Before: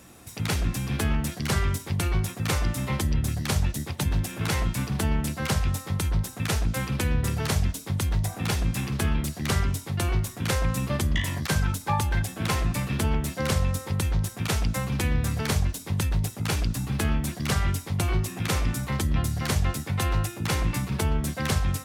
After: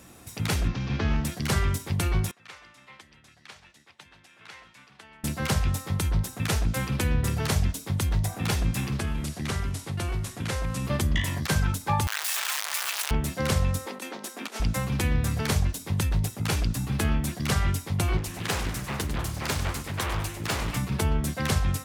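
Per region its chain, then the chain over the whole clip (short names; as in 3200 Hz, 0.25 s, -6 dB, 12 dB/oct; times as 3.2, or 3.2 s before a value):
0.68–1.25 CVSD 32 kbps + air absorption 55 m
2.31–5.24 LPF 2200 Hz + differentiator + echo 0.135 s -18 dB
8.99–10.85 CVSD 64 kbps + compressor 2:1, threshold -28 dBFS
12.07–13.11 infinite clipping + Bessel high-pass 1300 Hz, order 4 + fast leveller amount 50%
13.86–14.6 elliptic high-pass 240 Hz, stop band 50 dB + high shelf 9600 Hz -4.5 dB + negative-ratio compressor -35 dBFS, ratio -0.5
18.17–20.77 low shelf 280 Hz -6.5 dB + feedback echo 98 ms, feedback 41%, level -10 dB + Doppler distortion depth 0.98 ms
whole clip: dry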